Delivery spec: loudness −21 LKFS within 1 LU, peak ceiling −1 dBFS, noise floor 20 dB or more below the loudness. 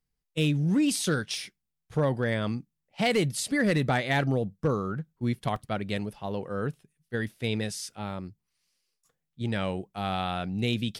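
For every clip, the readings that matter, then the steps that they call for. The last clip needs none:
share of clipped samples 0.2%; peaks flattened at −17.5 dBFS; number of dropouts 1; longest dropout 2.5 ms; integrated loudness −29.0 LKFS; sample peak −17.5 dBFS; target loudness −21.0 LKFS
→ clipped peaks rebuilt −17.5 dBFS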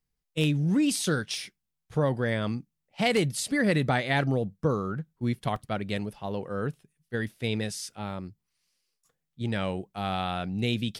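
share of clipped samples 0.0%; number of dropouts 1; longest dropout 2.5 ms
→ repair the gap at 0:05.56, 2.5 ms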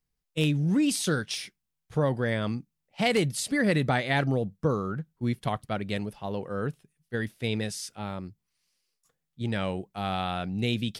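number of dropouts 0; integrated loudness −29.0 LKFS; sample peak −11.5 dBFS; target loudness −21.0 LKFS
→ level +8 dB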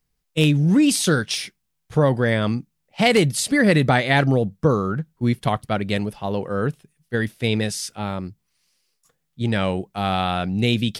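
integrated loudness −21.0 LKFS; sample peak −3.0 dBFS; background noise floor −74 dBFS

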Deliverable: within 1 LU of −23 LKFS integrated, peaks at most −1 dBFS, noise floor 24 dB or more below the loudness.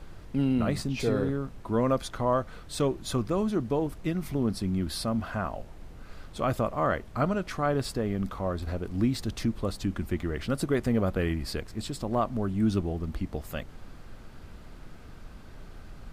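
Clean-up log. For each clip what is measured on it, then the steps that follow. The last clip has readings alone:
background noise floor −46 dBFS; target noise floor −54 dBFS; integrated loudness −30.0 LKFS; sample peak −14.0 dBFS; target loudness −23.0 LKFS
→ noise reduction from a noise print 8 dB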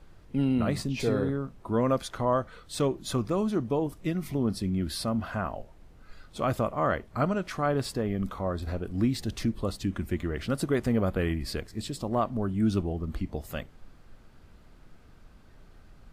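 background noise floor −54 dBFS; integrated loudness −30.0 LKFS; sample peak −14.0 dBFS; target loudness −23.0 LKFS
→ level +7 dB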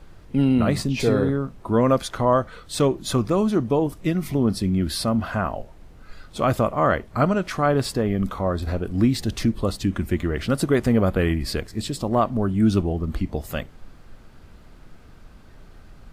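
integrated loudness −23.0 LKFS; sample peak −7.0 dBFS; background noise floor −47 dBFS

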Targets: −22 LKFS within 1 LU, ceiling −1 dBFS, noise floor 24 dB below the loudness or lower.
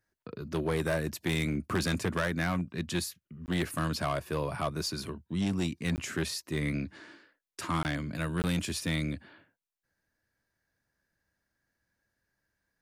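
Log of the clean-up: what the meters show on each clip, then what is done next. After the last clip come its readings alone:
share of clipped samples 1.5%; peaks flattened at −23.5 dBFS; number of dropouts 4; longest dropout 19 ms; integrated loudness −32.5 LKFS; sample peak −23.5 dBFS; target loudness −22.0 LKFS
→ clipped peaks rebuilt −23.5 dBFS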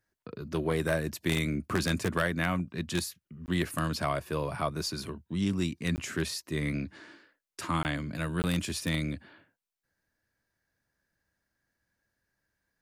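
share of clipped samples 0.0%; number of dropouts 4; longest dropout 19 ms
→ repair the gap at 0:03.46/0:05.96/0:07.83/0:08.42, 19 ms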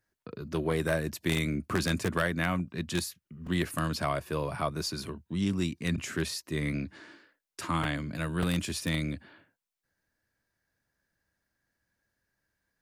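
number of dropouts 0; integrated loudness −31.5 LKFS; sample peak −14.5 dBFS; target loudness −22.0 LKFS
→ level +9.5 dB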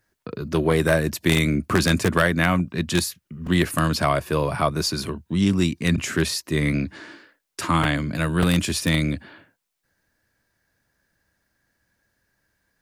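integrated loudness −22.0 LKFS; sample peak −5.0 dBFS; background noise floor −78 dBFS

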